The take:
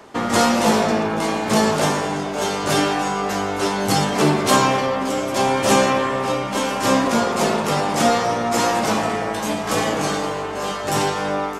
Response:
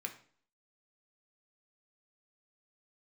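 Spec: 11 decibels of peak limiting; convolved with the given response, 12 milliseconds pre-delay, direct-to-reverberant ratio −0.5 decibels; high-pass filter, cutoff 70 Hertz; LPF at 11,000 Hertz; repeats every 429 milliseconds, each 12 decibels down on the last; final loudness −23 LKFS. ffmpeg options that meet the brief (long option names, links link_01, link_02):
-filter_complex "[0:a]highpass=70,lowpass=11000,alimiter=limit=-15dB:level=0:latency=1,aecho=1:1:429|858|1287:0.251|0.0628|0.0157,asplit=2[link_01][link_02];[1:a]atrim=start_sample=2205,adelay=12[link_03];[link_02][link_03]afir=irnorm=-1:irlink=0,volume=1dB[link_04];[link_01][link_04]amix=inputs=2:normalize=0,volume=-1.5dB"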